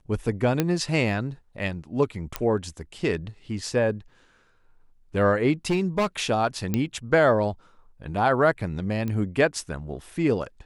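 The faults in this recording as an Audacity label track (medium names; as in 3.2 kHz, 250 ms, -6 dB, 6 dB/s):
0.600000	0.600000	pop -8 dBFS
2.360000	2.360000	pop -10 dBFS
5.700000	6.060000	clipped -18.5 dBFS
6.740000	6.740000	pop -11 dBFS
9.080000	9.080000	pop -18 dBFS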